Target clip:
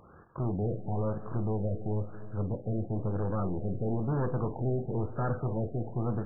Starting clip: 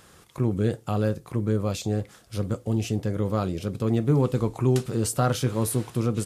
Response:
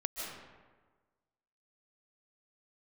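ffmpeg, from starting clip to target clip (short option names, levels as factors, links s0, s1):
-filter_complex "[0:a]asoftclip=type=tanh:threshold=0.0447,asplit=2[s0][s1];[1:a]atrim=start_sample=2205,adelay=50[s2];[s1][s2]afir=irnorm=-1:irlink=0,volume=0.224[s3];[s0][s3]amix=inputs=2:normalize=0,afftfilt=real='re*lt(b*sr/1024,760*pow(1800/760,0.5+0.5*sin(2*PI*1*pts/sr)))':imag='im*lt(b*sr/1024,760*pow(1800/760,0.5+0.5*sin(2*PI*1*pts/sr)))':win_size=1024:overlap=0.75"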